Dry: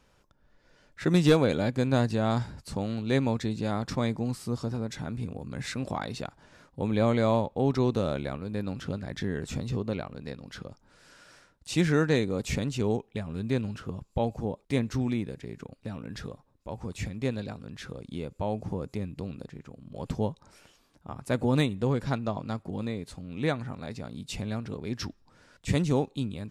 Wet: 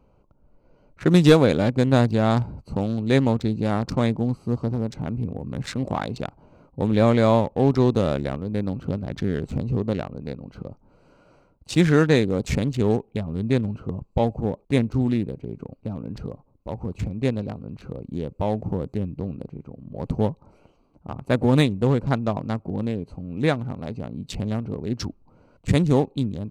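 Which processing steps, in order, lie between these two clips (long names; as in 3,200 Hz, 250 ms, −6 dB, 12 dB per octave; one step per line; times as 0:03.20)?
adaptive Wiener filter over 25 samples
level +7 dB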